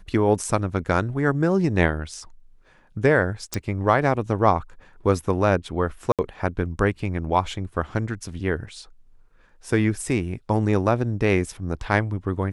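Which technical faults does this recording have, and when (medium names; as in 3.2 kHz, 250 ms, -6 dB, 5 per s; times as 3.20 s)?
3.54 s: pop -10 dBFS
6.12–6.19 s: dropout 67 ms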